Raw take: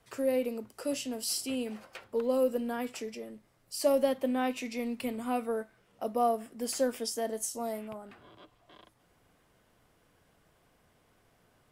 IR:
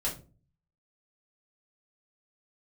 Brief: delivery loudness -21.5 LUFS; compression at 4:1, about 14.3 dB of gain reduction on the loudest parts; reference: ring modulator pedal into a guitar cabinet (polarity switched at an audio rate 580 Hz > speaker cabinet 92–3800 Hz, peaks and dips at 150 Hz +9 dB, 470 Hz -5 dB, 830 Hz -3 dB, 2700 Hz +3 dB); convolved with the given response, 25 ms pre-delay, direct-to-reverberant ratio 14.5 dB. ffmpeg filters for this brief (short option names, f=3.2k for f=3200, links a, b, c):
-filter_complex "[0:a]acompressor=threshold=-40dB:ratio=4,asplit=2[a][b];[1:a]atrim=start_sample=2205,adelay=25[c];[b][c]afir=irnorm=-1:irlink=0,volume=-19.5dB[d];[a][d]amix=inputs=2:normalize=0,aeval=exprs='val(0)*sgn(sin(2*PI*580*n/s))':c=same,highpass=92,equalizer=f=150:t=q:w=4:g=9,equalizer=f=470:t=q:w=4:g=-5,equalizer=f=830:t=q:w=4:g=-3,equalizer=f=2.7k:t=q:w=4:g=3,lowpass=f=3.8k:w=0.5412,lowpass=f=3.8k:w=1.3066,volume=22dB"